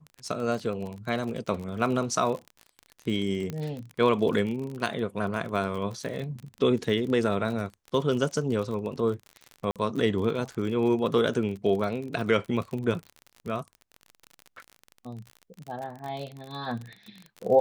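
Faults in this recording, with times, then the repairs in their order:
surface crackle 40 per second −33 dBFS
0:03.50: click −20 dBFS
0:09.71–0:09.76: drop-out 47 ms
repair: click removal
repair the gap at 0:09.71, 47 ms

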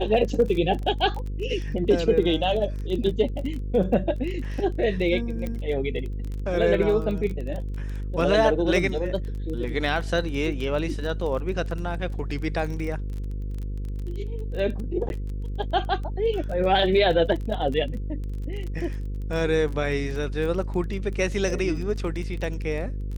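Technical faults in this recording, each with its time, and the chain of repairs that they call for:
mains buzz 50 Hz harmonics 10 −30 dBFS
surface crackle 22 per second −31 dBFS
0:05.47: click −19 dBFS
0:15.09–0:15.10: drop-out 11 ms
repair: click removal
hum removal 50 Hz, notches 10
repair the gap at 0:15.09, 11 ms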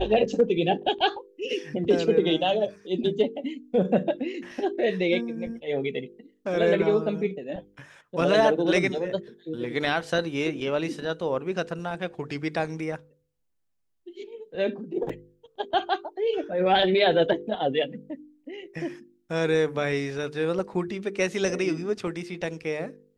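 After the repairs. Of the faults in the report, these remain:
none of them is left

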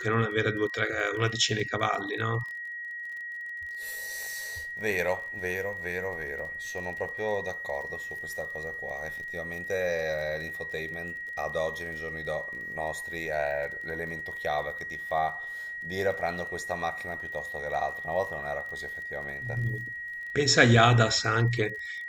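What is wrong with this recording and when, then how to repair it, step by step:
surface crackle 29 per second −38 dBFS
whistle 1,900 Hz −35 dBFS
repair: click removal
notch filter 1,900 Hz, Q 30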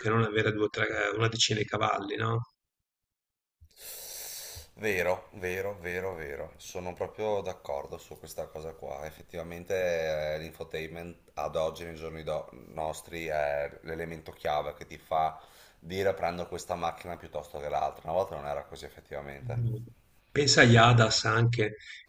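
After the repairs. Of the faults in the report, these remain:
none of them is left

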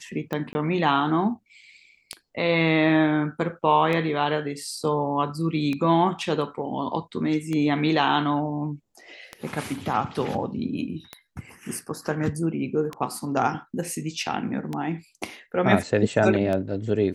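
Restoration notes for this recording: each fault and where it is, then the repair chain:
scratch tick 33 1/3 rpm −16 dBFS
0:00.53–0:00.55: drop-out 20 ms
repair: click removal
repair the gap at 0:00.53, 20 ms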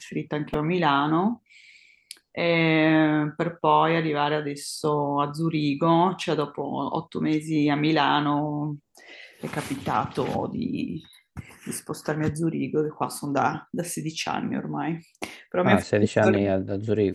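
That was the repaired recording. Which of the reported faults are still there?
none of them is left

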